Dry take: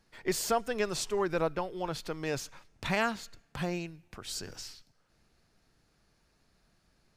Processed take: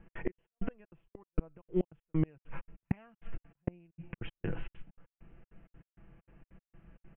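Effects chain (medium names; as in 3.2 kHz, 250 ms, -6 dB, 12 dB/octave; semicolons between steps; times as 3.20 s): trance gate "x.xx.x..xx" 196 bpm -60 dB; comb 6 ms, depth 47%; inverted gate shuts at -28 dBFS, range -35 dB; steep low-pass 3 kHz 96 dB/octave; bass shelf 410 Hz +11.5 dB; trim +3 dB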